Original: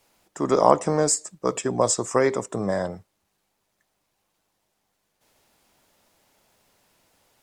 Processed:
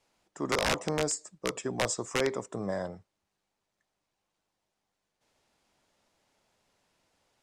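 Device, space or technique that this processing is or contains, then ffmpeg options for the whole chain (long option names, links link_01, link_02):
overflowing digital effects unit: -af "aeval=exprs='(mod(3.35*val(0)+1,2)-1)/3.35':channel_layout=same,lowpass=8000,volume=-8dB"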